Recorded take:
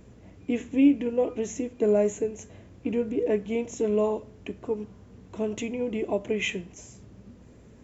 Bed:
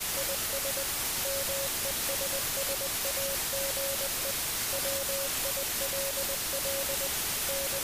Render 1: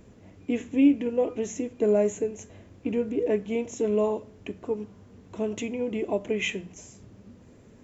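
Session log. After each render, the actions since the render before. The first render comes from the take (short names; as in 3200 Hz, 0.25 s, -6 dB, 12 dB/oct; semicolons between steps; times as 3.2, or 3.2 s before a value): de-hum 60 Hz, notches 3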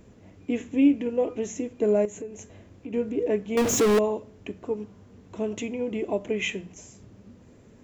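2.05–2.94 compressor 2.5:1, threshold -36 dBFS; 3.57–3.99 power-law curve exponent 0.35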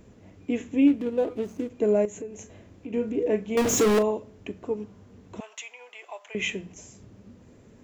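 0.87–1.7 median filter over 25 samples; 2.34–4.11 doubler 37 ms -11.5 dB; 5.4–6.35 HPF 880 Hz 24 dB/oct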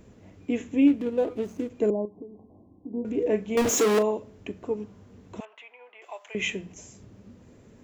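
1.9–3.05 rippled Chebyshev low-pass 1100 Hz, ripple 9 dB; 3.69–4.17 HPF 380 Hz -> 130 Hz; 5.45–6.02 air absorption 490 m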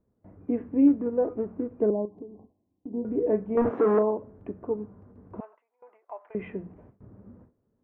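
inverse Chebyshev low-pass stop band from 7500 Hz, stop band 80 dB; gate with hold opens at -42 dBFS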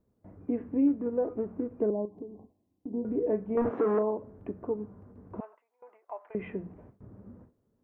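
compressor 1.5:1, threshold -31 dBFS, peak gain reduction 6 dB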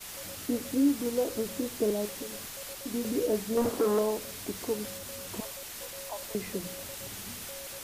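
add bed -10 dB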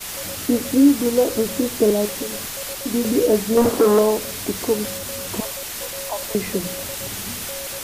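gain +11.5 dB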